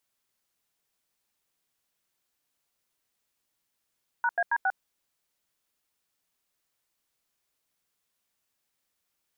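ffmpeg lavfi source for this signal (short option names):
-f lavfi -i "aevalsrc='0.0562*clip(min(mod(t,0.137),0.051-mod(t,0.137))/0.002,0,1)*(eq(floor(t/0.137),0)*(sin(2*PI*941*mod(t,0.137))+sin(2*PI*1477*mod(t,0.137)))+eq(floor(t/0.137),1)*(sin(2*PI*697*mod(t,0.137))+sin(2*PI*1633*mod(t,0.137)))+eq(floor(t/0.137),2)*(sin(2*PI*941*mod(t,0.137))+sin(2*PI*1633*mod(t,0.137)))+eq(floor(t/0.137),3)*(sin(2*PI*770*mod(t,0.137))+sin(2*PI*1477*mod(t,0.137))))':d=0.548:s=44100"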